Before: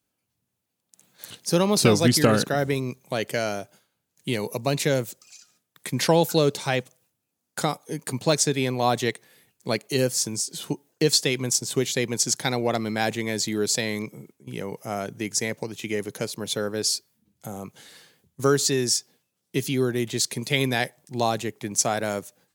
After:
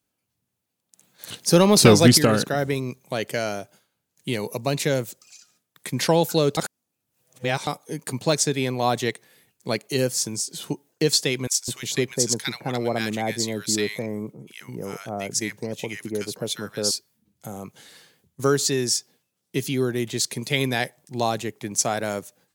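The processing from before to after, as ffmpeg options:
-filter_complex "[0:a]asettb=1/sr,asplit=3[a][b][c];[a]atrim=end=1.274[d];[b]atrim=start=1.27:end=2.18,asetpts=PTS-STARTPTS,afade=t=in:d=0.004:c=qsin,afade=t=out:st=0.906:d=0.004:c=qsin,acontrast=49[e];[c]atrim=start=2.176[f];[d][e]acrossfade=d=0.004:c1=hsin:c2=qsin[g];[g][f]acrossfade=d=0.004:c1=qsin:c2=hsin,asettb=1/sr,asplit=3[h][i][j];[h]atrim=end=11.474[k];[i]atrim=start=11.47:end=16.91,asetpts=PTS-STARTPTS,afade=t=in:d=0.004:c=qsin,afade=t=out:st=5.436:d=0.004:c=qsin,acrossover=split=1200[l][m];[l]adelay=210[n];[n][m]amix=inputs=2:normalize=0,atrim=end_sample=239904[o];[j]atrim=start=16.906[p];[k][o]acrossfade=d=0.004:c1=hsin:c2=qsin[q];[q][p]acrossfade=d=0.004:c1=qsin:c2=hsin,asplit=3[r][s][t];[r]atrim=end=6.572[u];[s]atrim=start=6.568:end=7.672,asetpts=PTS-STARTPTS,areverse[v];[t]atrim=start=7.668[w];[u][v]acrossfade=d=0.004:c1=hsin:c2=hsin[x];[x][w]acrossfade=d=0.004:c1=hsin:c2=hsin"

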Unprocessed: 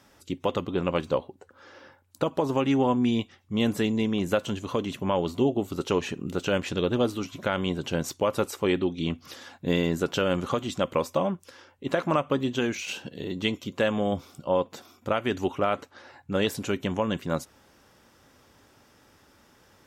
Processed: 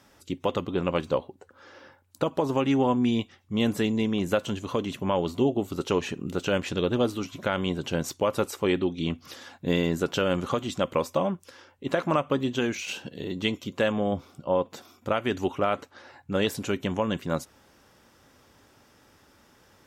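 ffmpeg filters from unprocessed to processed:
-filter_complex "[0:a]asettb=1/sr,asplit=3[a][b][c];[a]atrim=end=13.924[d];[b]atrim=start=13.92:end=14.65,asetpts=PTS-STARTPTS,afade=t=in:d=0.004:c=qsin,afade=t=out:st=0.726:d=0.004:c=qsin,highshelf=f=3.4k:g=-8.5[e];[c]atrim=start=14.646[f];[d][e]acrossfade=d=0.004:c1=hsin:c2=qsin[g];[g][f]acrossfade=d=0.004:c1=qsin:c2=hsin"

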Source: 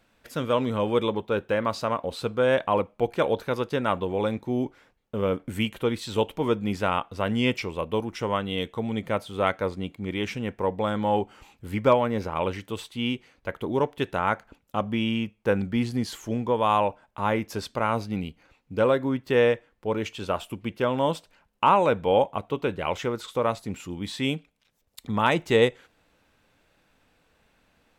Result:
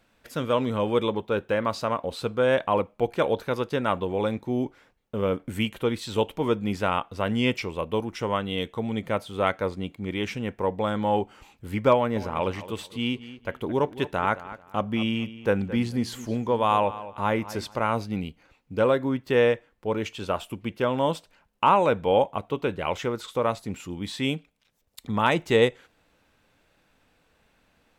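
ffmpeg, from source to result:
-filter_complex "[0:a]asettb=1/sr,asplit=3[a][b][c];[a]atrim=end=11.944[d];[b]atrim=start=11.94:end=17.79,asetpts=PTS-STARTPTS,afade=t=in:d=0.004:c=qsin,afade=t=out:st=5.846:d=0.004:c=qsin,asplit=2[e][f];[f]adelay=220,lowpass=f=5k:p=1,volume=-15dB,asplit=2[g][h];[h]adelay=220,lowpass=f=5k:p=1,volume=0.24,asplit=2[i][j];[j]adelay=220,lowpass=f=5k:p=1,volume=0.24[k];[e][g][i][k]amix=inputs=4:normalize=0,atrim=end_sample=257985[l];[c]atrim=start=17.786[m];[d][l]acrossfade=d=0.004:c1=hsin:c2=qsin[n];[n][m]acrossfade=d=0.004:c1=qsin:c2=hsin"

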